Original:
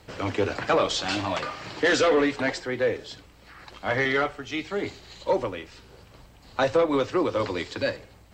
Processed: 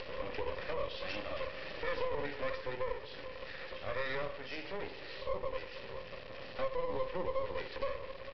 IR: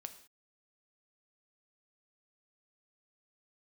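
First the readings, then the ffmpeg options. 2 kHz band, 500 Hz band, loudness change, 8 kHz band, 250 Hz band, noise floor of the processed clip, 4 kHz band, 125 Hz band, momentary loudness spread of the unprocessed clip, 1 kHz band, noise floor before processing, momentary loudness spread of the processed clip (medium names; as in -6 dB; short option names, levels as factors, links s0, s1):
-13.5 dB, -12.5 dB, -14.0 dB, under -30 dB, -20.0 dB, -47 dBFS, -13.5 dB, -13.0 dB, 14 LU, -12.5 dB, -53 dBFS, 8 LU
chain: -filter_complex "[0:a]aeval=exprs='val(0)+0.5*0.0299*sgn(val(0))':c=same,asplit=3[s0][s1][s2];[s0]bandpass=f=530:t=q:w=8,volume=1[s3];[s1]bandpass=f=1840:t=q:w=8,volume=0.501[s4];[s2]bandpass=f=2480:t=q:w=8,volume=0.355[s5];[s3][s4][s5]amix=inputs=3:normalize=0,asplit=2[s6][s7];[s7]acompressor=threshold=0.0158:ratio=6,volume=1.12[s8];[s6][s8]amix=inputs=2:normalize=0,lowshelf=f=270:g=12,bandreject=f=50:t=h:w=6,bandreject=f=100:t=h:w=6,bandreject=f=150:t=h:w=6,bandreject=f=200:t=h:w=6,bandreject=f=250:t=h:w=6,bandreject=f=300:t=h:w=6,bandreject=f=350:t=h:w=6,bandreject=f=400:t=h:w=6,bandreject=f=450:t=h:w=6,bandreject=f=500:t=h:w=6,alimiter=limit=0.106:level=0:latency=1:release=56,aecho=1:1:452:0.141,acompressor=mode=upward:threshold=0.0282:ratio=2.5,highshelf=f=4100:g=9.5[s9];[1:a]atrim=start_sample=2205,asetrate=83790,aresample=44100[s10];[s9][s10]afir=irnorm=-1:irlink=0,aresample=11025,aeval=exprs='max(val(0),0)':c=same,aresample=44100,volume=1.68"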